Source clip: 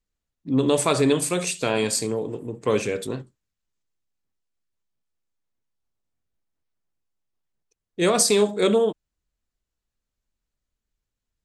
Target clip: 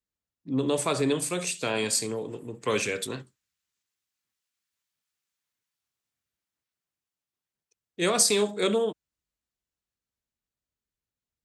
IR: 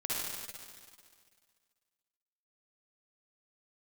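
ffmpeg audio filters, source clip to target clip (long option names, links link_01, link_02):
-filter_complex "[0:a]highpass=70,acrossover=split=390|1200[link_01][link_02][link_03];[link_03]dynaudnorm=framelen=410:gausssize=11:maxgain=14.5dB[link_04];[link_01][link_02][link_04]amix=inputs=3:normalize=0,volume=-6dB"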